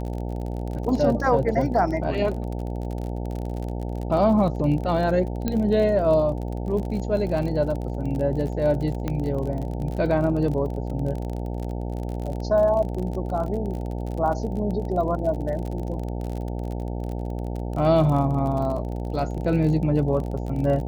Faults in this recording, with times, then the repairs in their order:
buzz 60 Hz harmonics 15 -29 dBFS
crackle 38/s -30 dBFS
5.48 pop -12 dBFS
9.08 pop -14 dBFS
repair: de-click; de-hum 60 Hz, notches 15

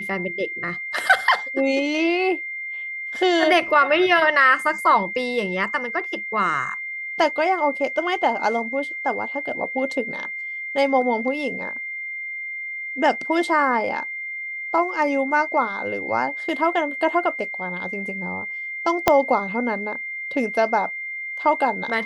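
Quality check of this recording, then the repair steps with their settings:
tone 2100 Hz -28 dBFS
19.08 pop -1 dBFS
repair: de-click; notch 2100 Hz, Q 30

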